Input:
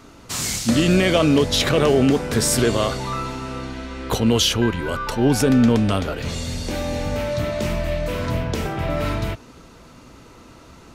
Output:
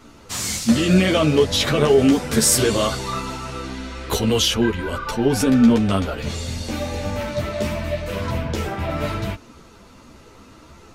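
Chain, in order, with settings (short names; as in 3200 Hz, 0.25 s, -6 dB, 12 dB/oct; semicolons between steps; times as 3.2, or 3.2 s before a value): 1.98–4.39 high shelf 3900 Hz +6.5 dB; ensemble effect; gain +2.5 dB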